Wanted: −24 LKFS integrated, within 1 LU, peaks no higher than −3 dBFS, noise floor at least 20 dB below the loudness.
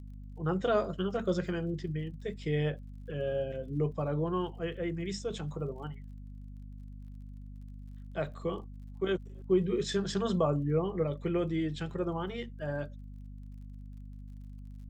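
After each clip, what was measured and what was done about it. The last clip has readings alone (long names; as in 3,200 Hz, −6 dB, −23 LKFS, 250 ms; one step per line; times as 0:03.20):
crackle rate 35 per second; mains hum 50 Hz; hum harmonics up to 250 Hz; level of the hum −42 dBFS; integrated loudness −33.5 LKFS; sample peak −16.5 dBFS; target loudness −24.0 LKFS
→ click removal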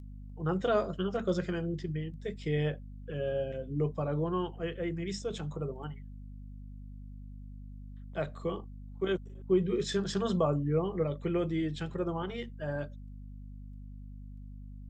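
crackle rate 0.067 per second; mains hum 50 Hz; hum harmonics up to 250 Hz; level of the hum −42 dBFS
→ hum removal 50 Hz, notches 5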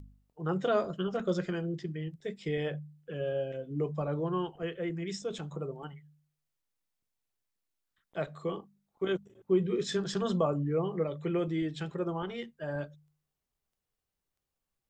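mains hum none found; integrated loudness −34.0 LKFS; sample peak −16.5 dBFS; target loudness −24.0 LKFS
→ level +10 dB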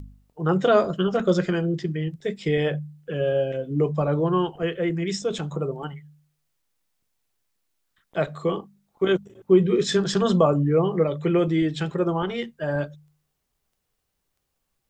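integrated loudness −24.0 LKFS; sample peak −6.5 dBFS; background noise floor −77 dBFS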